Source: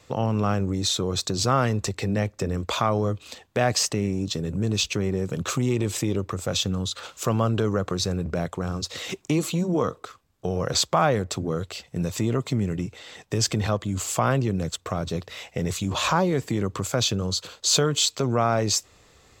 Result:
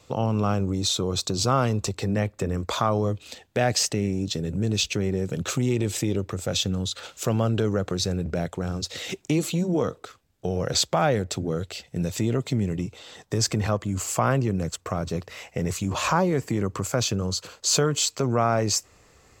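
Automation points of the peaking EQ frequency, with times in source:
peaking EQ -8 dB 0.39 oct
1.96 s 1.8 kHz
2.29 s 6.5 kHz
3.21 s 1.1 kHz
12.50 s 1.1 kHz
13.59 s 3.6 kHz

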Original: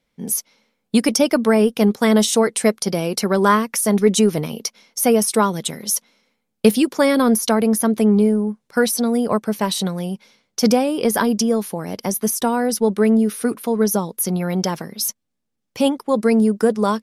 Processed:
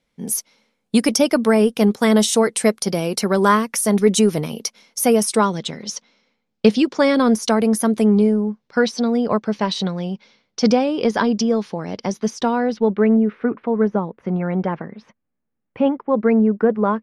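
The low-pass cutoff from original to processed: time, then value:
low-pass 24 dB/octave
5.16 s 12 kHz
5.65 s 5.9 kHz
6.85 s 5.9 kHz
7.87 s 11 kHz
8.64 s 5.4 kHz
12.41 s 5.4 kHz
13.17 s 2.2 kHz

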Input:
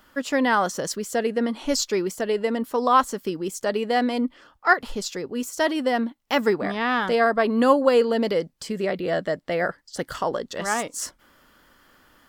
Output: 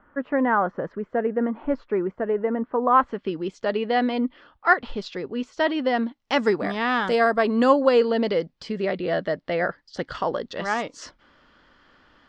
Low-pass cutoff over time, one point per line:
low-pass 24 dB/octave
2.83 s 1.7 kHz
3.37 s 4 kHz
5.71 s 4 kHz
6.80 s 8.9 kHz
7.36 s 8.9 kHz
8.17 s 4.8 kHz

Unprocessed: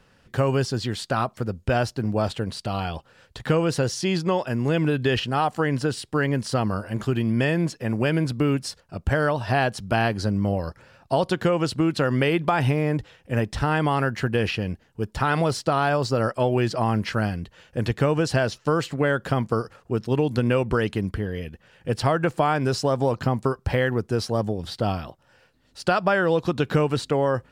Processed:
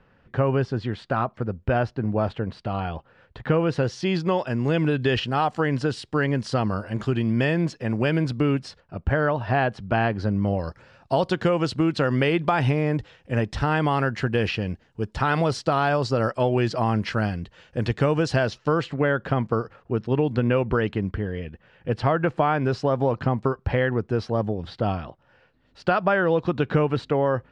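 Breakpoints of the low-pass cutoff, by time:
3.41 s 2.2 kHz
4.46 s 5.4 kHz
8.35 s 5.4 kHz
8.95 s 2.5 kHz
10.18 s 2.5 kHz
10.66 s 5.9 kHz
18.32 s 5.9 kHz
19.12 s 2.9 kHz

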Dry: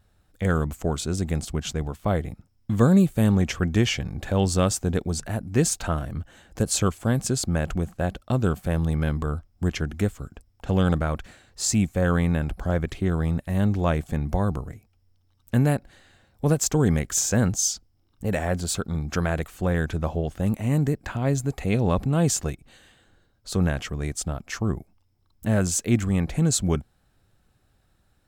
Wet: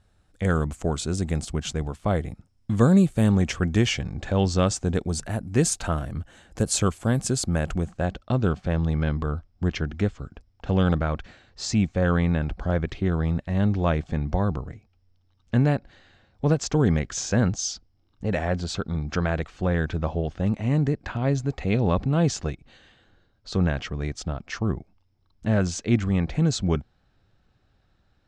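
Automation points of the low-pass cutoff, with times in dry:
low-pass 24 dB/octave
3.86 s 10 kHz
4.48 s 6 kHz
5.16 s 11 kHz
7.62 s 11 kHz
8.27 s 5.6 kHz

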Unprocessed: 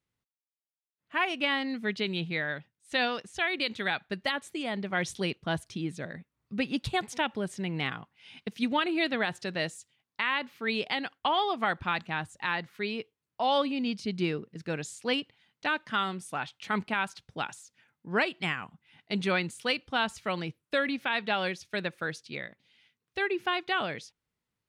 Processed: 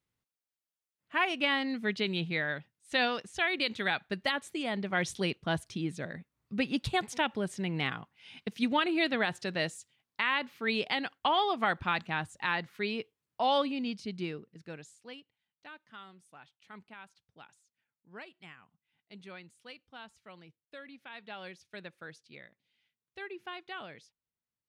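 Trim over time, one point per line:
13.43 s -0.5 dB
14.73 s -11 dB
15.21 s -20 dB
20.86 s -20 dB
21.58 s -13 dB

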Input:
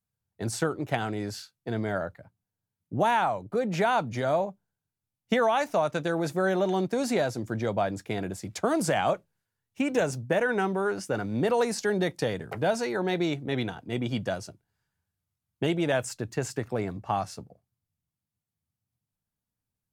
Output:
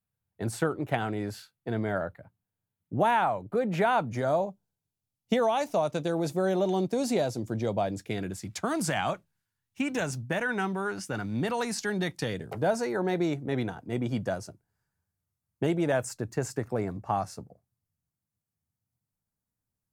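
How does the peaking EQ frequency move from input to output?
peaking EQ -8.5 dB 1.1 oct
3.98 s 5.7 kHz
4.47 s 1.6 kHz
7.80 s 1.6 kHz
8.49 s 500 Hz
12.20 s 500 Hz
12.69 s 3.2 kHz

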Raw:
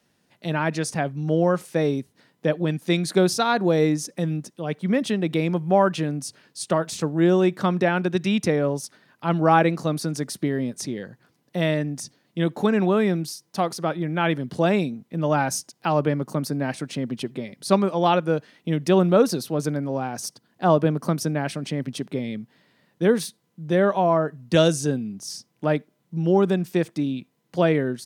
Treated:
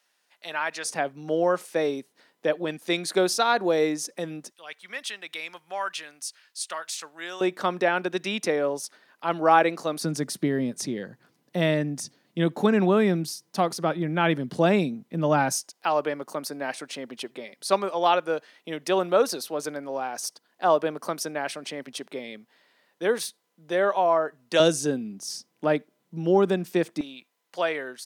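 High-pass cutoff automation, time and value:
880 Hz
from 0.85 s 390 Hz
from 4.52 s 1.5 kHz
from 7.41 s 400 Hz
from 10.01 s 140 Hz
from 15.52 s 500 Hz
from 24.60 s 240 Hz
from 27.01 s 750 Hz

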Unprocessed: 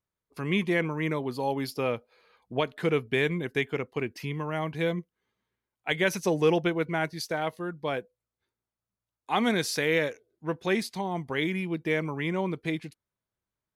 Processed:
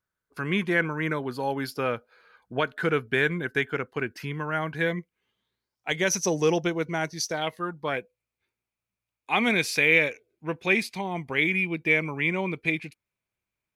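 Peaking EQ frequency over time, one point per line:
peaking EQ +14 dB 0.38 oct
4.74 s 1.5 kHz
5.88 s 5.9 kHz
7.30 s 5.9 kHz
7.75 s 740 Hz
7.99 s 2.4 kHz

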